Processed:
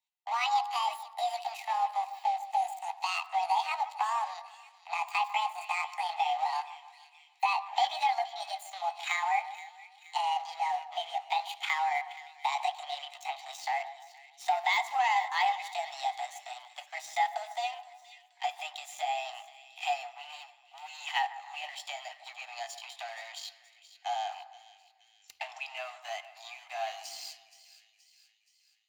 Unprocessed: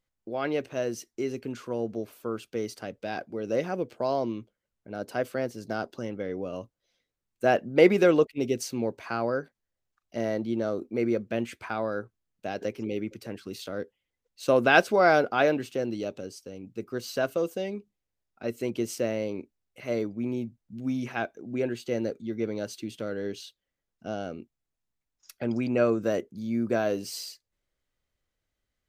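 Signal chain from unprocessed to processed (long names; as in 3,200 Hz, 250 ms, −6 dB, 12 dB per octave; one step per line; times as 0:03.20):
pitch glide at a constant tempo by +10.5 semitones ending unshifted
healed spectral selection 0:02.15–0:02.90, 950–6,000 Hz
leveller curve on the samples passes 2
downward compressor 10 to 1, threshold −26 dBFS, peak gain reduction 15.5 dB
Butterworth high-pass 730 Hz 96 dB per octave
parametric band 1,400 Hz −13 dB 0.41 octaves
de-essing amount 80%
parametric band 6,400 Hz −7.5 dB 0.2 octaves
echo with a time of its own for lows and highs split 2,000 Hz, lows 148 ms, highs 474 ms, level −15 dB
convolution reverb RT60 0.60 s, pre-delay 3 ms, DRR 15 dB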